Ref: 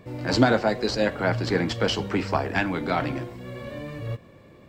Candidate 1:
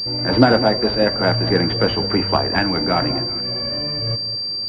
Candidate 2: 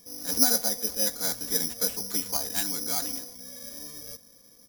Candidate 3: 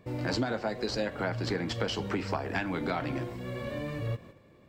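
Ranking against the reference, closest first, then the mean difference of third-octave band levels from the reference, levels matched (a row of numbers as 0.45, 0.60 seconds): 3, 1, 2; 3.5, 5.5, 14.5 decibels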